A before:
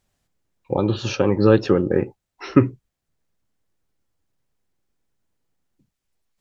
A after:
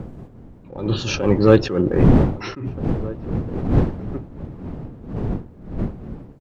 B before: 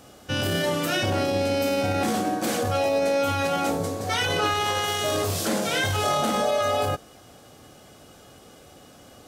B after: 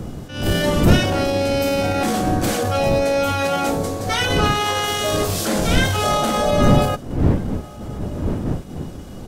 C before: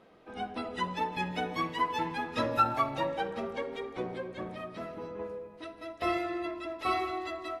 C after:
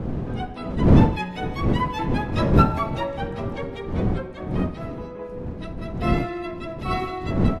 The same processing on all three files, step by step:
wind noise 220 Hz -26 dBFS; echo from a far wall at 270 m, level -20 dB; in parallel at -6.5 dB: hard clipper -14 dBFS; on the sum: attacks held to a fixed rise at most 100 dB/s; trim +1 dB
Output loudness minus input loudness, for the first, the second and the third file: -0.5 LU, +5.0 LU, +9.5 LU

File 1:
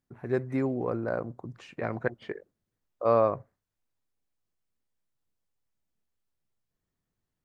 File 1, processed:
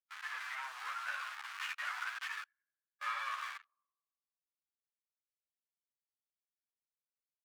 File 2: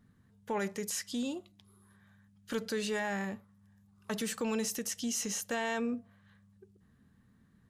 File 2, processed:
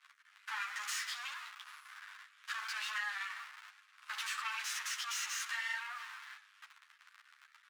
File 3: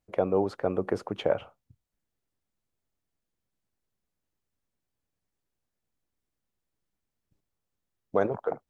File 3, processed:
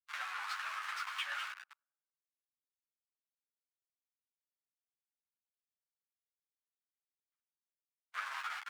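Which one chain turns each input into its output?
CVSD coder 64 kbps; treble shelf 3.1 kHz -4.5 dB; on a send: tape echo 96 ms, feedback 64%, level -22 dB, low-pass 2.7 kHz; on the sum: waveshaping leveller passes 5; in parallel at -4 dB: Schmitt trigger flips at -39 dBFS; on the sum: overdrive pedal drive 16 dB, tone 1.9 kHz, clips at -9.5 dBFS; harmonic-percussive split percussive -7 dB; steep high-pass 1.2 kHz 36 dB/octave; compression 10:1, threshold -29 dBFS; three-phase chorus; trim -3 dB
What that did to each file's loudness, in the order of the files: -11.0 LU, -4.0 LU, -11.0 LU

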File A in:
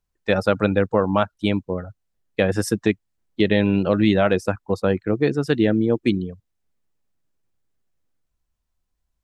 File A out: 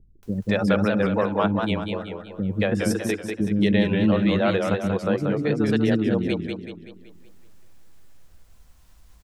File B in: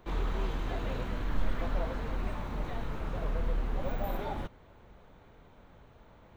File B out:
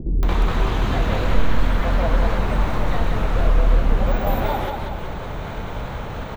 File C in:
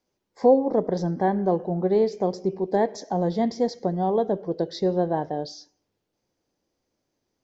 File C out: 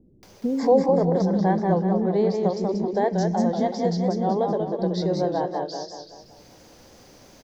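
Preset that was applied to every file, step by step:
dynamic bell 200 Hz, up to +4 dB, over -36 dBFS, Q 2.1; upward compressor, threshold -28 dBFS; bands offset in time lows, highs 230 ms, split 330 Hz; modulated delay 189 ms, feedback 47%, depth 125 cents, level -4.5 dB; normalise loudness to -23 LUFS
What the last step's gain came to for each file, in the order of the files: -3.5 dB, +12.5 dB, 0.0 dB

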